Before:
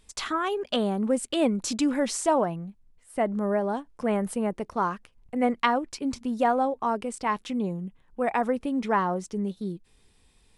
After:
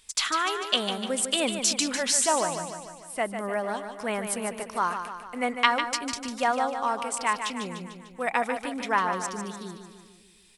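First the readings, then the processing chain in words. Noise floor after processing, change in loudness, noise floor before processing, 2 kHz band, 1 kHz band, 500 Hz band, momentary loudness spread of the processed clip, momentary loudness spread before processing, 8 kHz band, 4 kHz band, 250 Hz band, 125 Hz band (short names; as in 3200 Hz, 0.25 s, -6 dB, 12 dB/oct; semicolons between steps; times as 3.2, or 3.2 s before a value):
-54 dBFS, 0.0 dB, -62 dBFS, +5.5 dB, +0.5 dB, -3.5 dB, 13 LU, 9 LU, +9.5 dB, +8.5 dB, -7.0 dB, -7.5 dB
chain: tilt shelf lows -9 dB; feedback echo 0.149 s, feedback 56%, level -8 dB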